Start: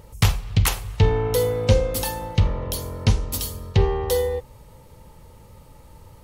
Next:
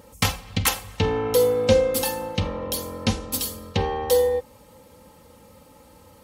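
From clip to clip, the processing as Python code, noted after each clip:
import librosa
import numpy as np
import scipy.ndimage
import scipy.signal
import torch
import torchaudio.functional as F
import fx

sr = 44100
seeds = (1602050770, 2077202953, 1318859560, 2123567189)

y = scipy.signal.sosfilt(scipy.signal.butter(2, 120.0, 'highpass', fs=sr, output='sos'), x)
y = y + 0.64 * np.pad(y, (int(3.8 * sr / 1000.0), 0))[:len(y)]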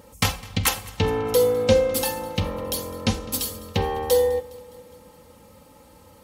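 y = fx.echo_feedback(x, sr, ms=206, feedback_pct=59, wet_db=-21.5)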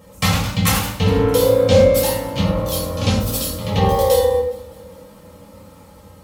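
y = fx.echo_pitch(x, sr, ms=119, semitones=1, count=2, db_per_echo=-6.0)
y = fx.room_shoebox(y, sr, seeds[0], volume_m3=660.0, walls='furnished', distance_m=6.0)
y = y * librosa.db_to_amplitude(-3.5)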